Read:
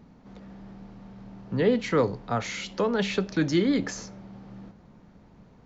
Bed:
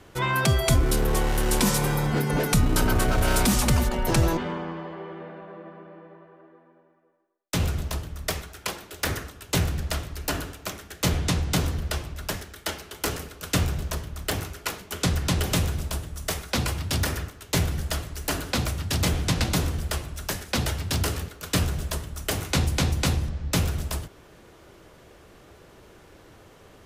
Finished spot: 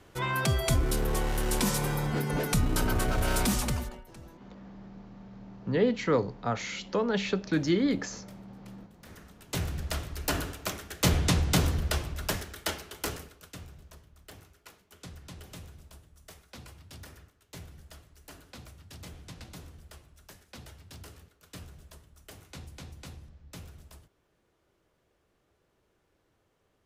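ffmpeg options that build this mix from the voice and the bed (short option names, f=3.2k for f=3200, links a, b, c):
-filter_complex "[0:a]adelay=4150,volume=-2.5dB[a];[1:a]volume=22.5dB,afade=t=out:st=3.51:d=0.54:silence=0.0707946,afade=t=in:st=9.04:d=1.45:silence=0.0398107,afade=t=out:st=12.54:d=1.01:silence=0.0841395[b];[a][b]amix=inputs=2:normalize=0"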